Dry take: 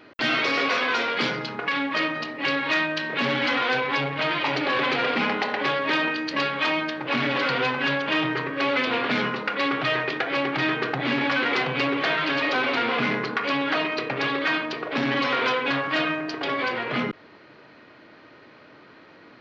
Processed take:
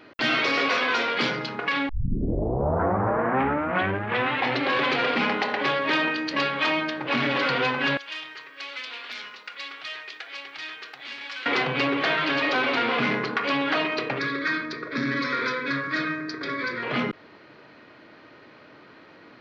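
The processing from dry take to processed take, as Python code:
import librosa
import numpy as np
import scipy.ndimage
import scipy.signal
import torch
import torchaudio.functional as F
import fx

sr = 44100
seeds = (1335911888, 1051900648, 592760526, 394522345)

y = fx.differentiator(x, sr, at=(7.97, 11.46))
y = fx.fixed_phaser(y, sr, hz=2900.0, stages=6, at=(14.19, 16.83))
y = fx.edit(y, sr, fx.tape_start(start_s=1.89, length_s=2.88), tone=tone)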